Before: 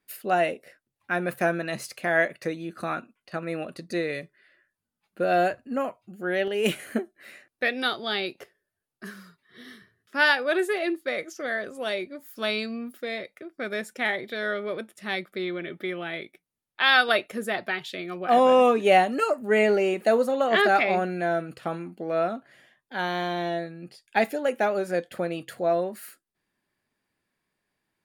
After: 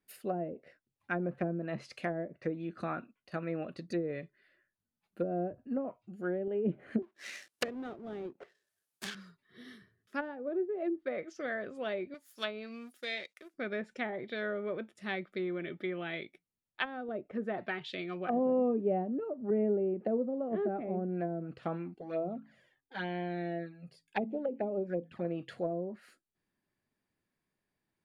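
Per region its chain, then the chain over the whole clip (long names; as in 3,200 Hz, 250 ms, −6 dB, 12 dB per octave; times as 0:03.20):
0:07.02–0:09.15: each half-wave held at its own peak + spectral tilt +4 dB per octave
0:12.14–0:13.54: mu-law and A-law mismatch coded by A + spectral tilt +3.5 dB per octave
0:21.94–0:25.25: hum removal 54.84 Hz, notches 5 + flanger swept by the level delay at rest 2.7 ms, full sweep at −22.5 dBFS
whole clip: low-shelf EQ 480 Hz +7 dB; treble cut that deepens with the level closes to 390 Hz, closed at −18.5 dBFS; dynamic equaliser 3,100 Hz, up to +5 dB, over −48 dBFS, Q 0.81; level −9 dB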